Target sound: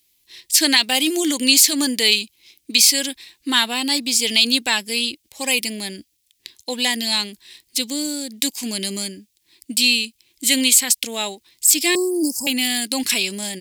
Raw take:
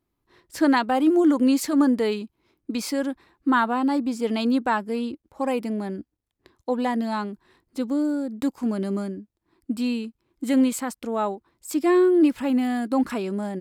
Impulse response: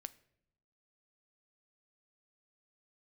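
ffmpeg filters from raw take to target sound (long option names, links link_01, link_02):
-filter_complex "[0:a]aexciter=amount=15.2:drive=7.5:freq=2100,asettb=1/sr,asplit=3[link_01][link_02][link_03];[link_01]atrim=end=11.954[link_04];[link_02]atrim=start=11.95:end=12.47,asetpts=PTS-STARTPTS,afade=type=in:duration=0.004:curve=qsin,afade=type=out:start_time=0.516:duration=0.004:curve=qsin,asuperstop=centerf=2300:order=20:qfactor=0.61[link_05];[link_03]atrim=start=12.466[link_06];[link_04][link_05]acrossfade=duration=0.004:curve1=hsin:curve2=qsin[link_07];[link_07][link_06]acrossfade=duration=0.004:curve1=qsin:curve2=hsin,alimiter=level_in=-2.5dB:limit=-1dB:release=50:level=0:latency=1,volume=-1dB"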